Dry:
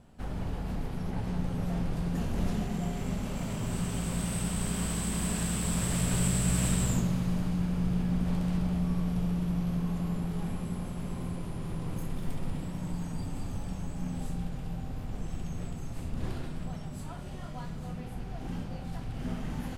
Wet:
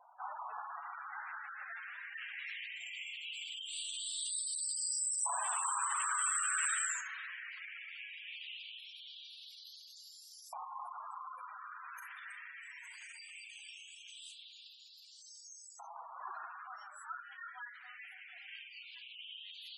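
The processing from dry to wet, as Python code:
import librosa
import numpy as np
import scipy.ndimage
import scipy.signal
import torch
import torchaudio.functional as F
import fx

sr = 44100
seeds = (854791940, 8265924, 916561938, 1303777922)

y = fx.doubler(x, sr, ms=33.0, db=-9.0)
y = fx.filter_lfo_highpass(y, sr, shape='saw_up', hz=0.19, low_hz=900.0, high_hz=5600.0, q=3.2)
y = fx.spec_gate(y, sr, threshold_db=-10, keep='strong')
y = y * 10.0 ** (1.0 / 20.0)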